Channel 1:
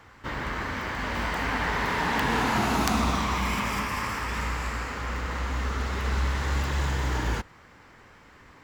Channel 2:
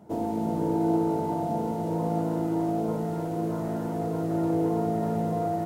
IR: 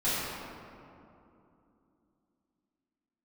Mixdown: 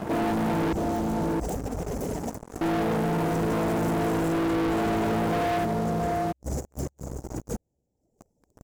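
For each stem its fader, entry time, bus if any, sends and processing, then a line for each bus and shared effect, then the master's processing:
-6.5 dB, 0.15 s, no send, echo send -21.5 dB, reverb removal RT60 1.2 s; inverse Chebyshev band-stop 1.1–4 kHz, stop band 40 dB; compressor with a negative ratio -38 dBFS, ratio -0.5
+2.5 dB, 0.00 s, muted 0.73–2.61 s, no send, echo send -9 dB, none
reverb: none
echo: delay 670 ms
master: waveshaping leveller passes 5; peak limiter -23 dBFS, peak gain reduction 9.5 dB

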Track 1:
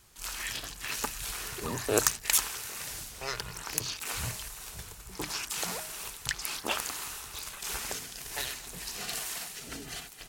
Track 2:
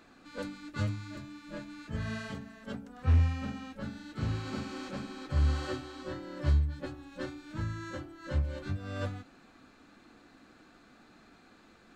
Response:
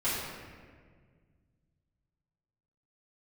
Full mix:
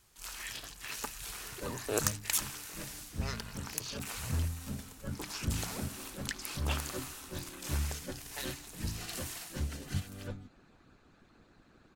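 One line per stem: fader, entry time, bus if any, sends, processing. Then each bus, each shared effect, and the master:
-6.0 dB, 0.00 s, no send, none
-1.0 dB, 1.25 s, no send, harmonic-percussive split harmonic -17 dB; bass shelf 220 Hz +9 dB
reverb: none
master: none

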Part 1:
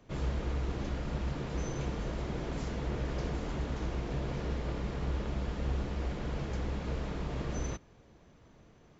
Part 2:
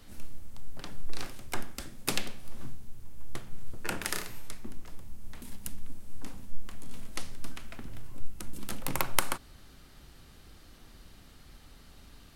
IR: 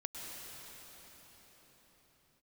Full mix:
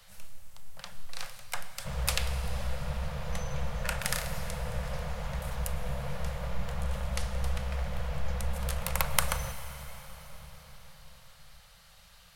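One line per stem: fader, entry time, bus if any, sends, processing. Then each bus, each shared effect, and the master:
+1.5 dB, 1.75 s, send -7.5 dB, tilt EQ -1.5 dB/octave
-0.5 dB, 0.00 s, send -6.5 dB, none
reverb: on, pre-delay 97 ms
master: elliptic band-stop 190–500 Hz, stop band 40 dB; bass shelf 350 Hz -9.5 dB

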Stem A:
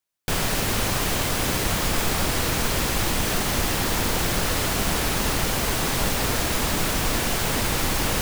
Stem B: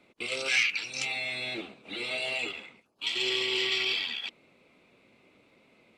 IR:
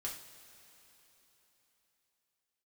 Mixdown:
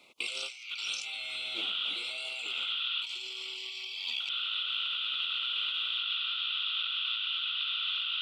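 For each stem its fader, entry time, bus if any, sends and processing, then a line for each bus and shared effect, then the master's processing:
-4.0 dB, 0.00 s, muted 3.57–4.20 s, no send, Chebyshev band-pass 1.4–3.5 kHz, order 4; static phaser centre 2.2 kHz, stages 6
-3.5 dB, 0.00 s, no send, peaking EQ 1.7 kHz +7.5 dB 0.21 oct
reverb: none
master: tilt shelf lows -9.5 dB, about 710 Hz; compressor with a negative ratio -34 dBFS, ratio -1; Butterworth band-stop 1.7 kHz, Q 1.5

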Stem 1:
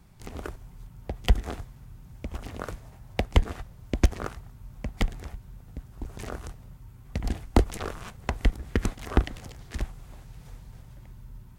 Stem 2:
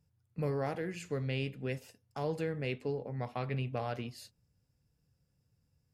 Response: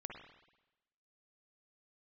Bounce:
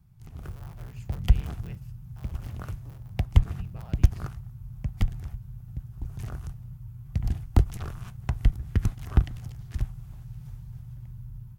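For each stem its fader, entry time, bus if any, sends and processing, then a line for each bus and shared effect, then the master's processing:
-6.0 dB, 0.00 s, no send, none
0.61 s -17 dB -> 0.96 s -9.5 dB -> 1.88 s -9.5 dB -> 2.28 s -19.5 dB -> 3.13 s -19.5 dB -> 3.75 s -10 dB, 0.00 s, no send, cycle switcher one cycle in 3, inverted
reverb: none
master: graphic EQ 125/250/500/1000/2000/4000/8000 Hz +11/-7/-12/-4/-7/-6/-7 dB; level rider gain up to 6.5 dB

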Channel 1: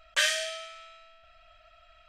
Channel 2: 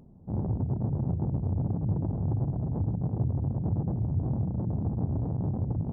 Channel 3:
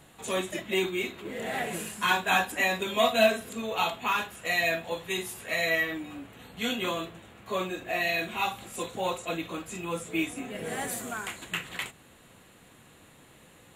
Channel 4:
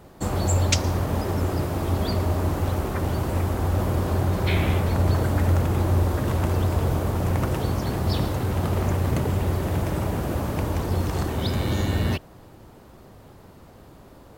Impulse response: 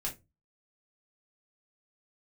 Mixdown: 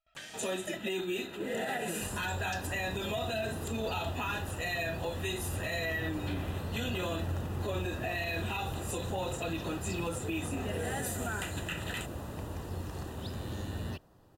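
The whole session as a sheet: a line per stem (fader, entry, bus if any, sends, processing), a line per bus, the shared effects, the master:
-13.0 dB, 0.00 s, bus B, no send, none
-12.0 dB, 2.45 s, bus B, no send, none
+2.0 dB, 0.15 s, bus A, no send, comb of notches 1.1 kHz; compression 2.5:1, threshold -31 dBFS, peak gain reduction 10 dB
-14.5 dB, 1.80 s, bus A, no send, none
bus A: 0.0 dB, Butterworth band-stop 2.2 kHz, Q 7.6; peak limiter -25.5 dBFS, peak gain reduction 9 dB
bus B: 0.0 dB, gate with hold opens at -60 dBFS; compression 3:1, threshold -47 dBFS, peak gain reduction 10 dB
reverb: none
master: none

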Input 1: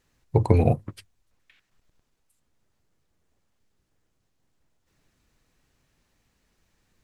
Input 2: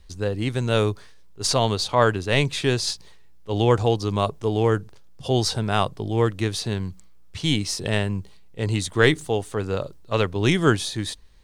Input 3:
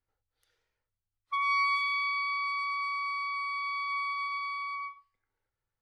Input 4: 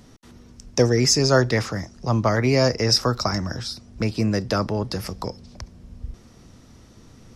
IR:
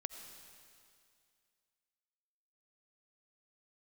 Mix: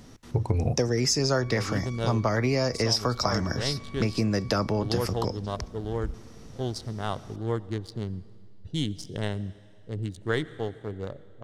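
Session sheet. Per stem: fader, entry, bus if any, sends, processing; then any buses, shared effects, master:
-4.0 dB, 0.00 s, no send, bass shelf 130 Hz +8 dB
-11.0 dB, 1.30 s, send -7 dB, local Wiener filter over 41 samples; peaking EQ 2.5 kHz -13 dB 0.26 oct; gain riding 2 s
-17.0 dB, 0.00 s, no send, none
+0.5 dB, 0.00 s, no send, none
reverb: on, RT60 2.3 s, pre-delay 45 ms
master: compression 6:1, threshold -21 dBFS, peak gain reduction 10 dB

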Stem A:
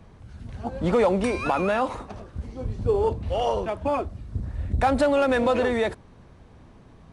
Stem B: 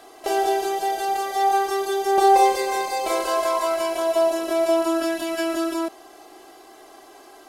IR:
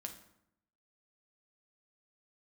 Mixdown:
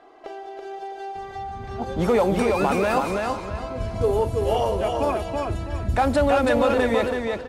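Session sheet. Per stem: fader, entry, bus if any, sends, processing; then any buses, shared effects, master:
+0.5 dB, 1.15 s, no send, echo send -3.5 dB, none
-3.5 dB, 0.00 s, no send, echo send -5.5 dB, compression 16:1, threshold -30 dBFS, peak gain reduction 19.5 dB; treble shelf 6.1 kHz +6 dB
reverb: none
echo: feedback delay 329 ms, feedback 30%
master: level-controlled noise filter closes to 1.9 kHz, open at -17.5 dBFS

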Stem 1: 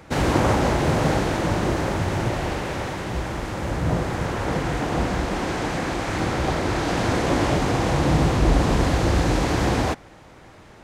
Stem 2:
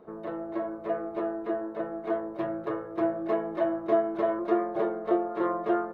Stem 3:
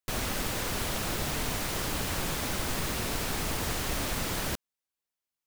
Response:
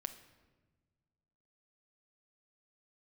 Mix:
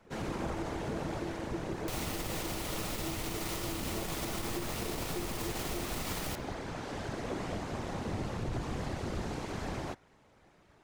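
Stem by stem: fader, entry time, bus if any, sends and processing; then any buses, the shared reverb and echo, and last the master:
-16.5 dB, 0.00 s, no bus, no send, whisper effect
-1.0 dB, 0.05 s, bus A, no send, Gaussian low-pass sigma 21 samples
-2.5 dB, 1.80 s, bus A, send -9 dB, band-stop 1.6 kHz, Q 5.9
bus A: 0.0 dB, transient shaper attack +4 dB, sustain -12 dB; compression 2.5:1, threshold -36 dBFS, peak gain reduction 9.5 dB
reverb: on, RT60 1.4 s, pre-delay 6 ms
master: peak limiter -26 dBFS, peak gain reduction 5.5 dB

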